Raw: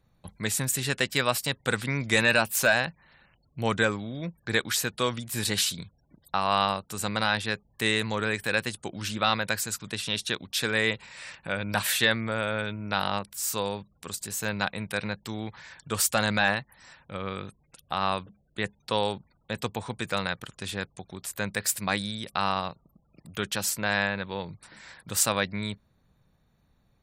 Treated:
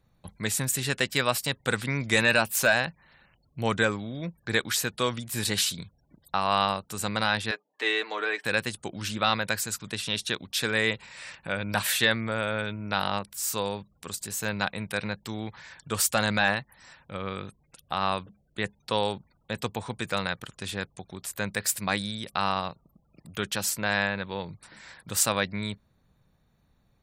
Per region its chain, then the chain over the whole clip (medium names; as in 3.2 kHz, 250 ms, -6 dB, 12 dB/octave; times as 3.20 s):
7.51–8.45 s: Bessel high-pass 460 Hz, order 6 + distance through air 150 m + comb 6.6 ms, depth 70%
whole clip: none